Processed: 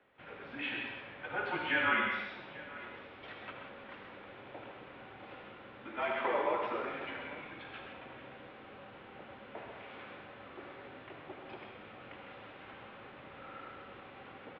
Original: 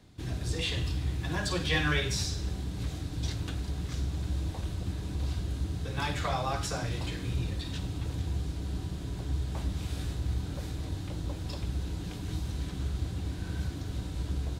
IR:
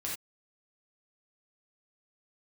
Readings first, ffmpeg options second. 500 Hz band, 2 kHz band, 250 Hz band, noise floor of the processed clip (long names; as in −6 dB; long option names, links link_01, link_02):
0.0 dB, +1.0 dB, −9.5 dB, −53 dBFS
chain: -filter_complex "[0:a]highpass=frequency=540:width_type=q:width=0.5412,highpass=frequency=540:width_type=q:width=1.307,lowpass=frequency=2800:width_type=q:width=0.5176,lowpass=frequency=2800:width_type=q:width=0.7071,lowpass=frequency=2800:width_type=q:width=1.932,afreqshift=-200,aecho=1:1:130|841:0.398|0.112,asplit=2[link_01][link_02];[1:a]atrim=start_sample=2205,asetrate=38367,aresample=44100,adelay=76[link_03];[link_02][link_03]afir=irnorm=-1:irlink=0,volume=-6.5dB[link_04];[link_01][link_04]amix=inputs=2:normalize=0"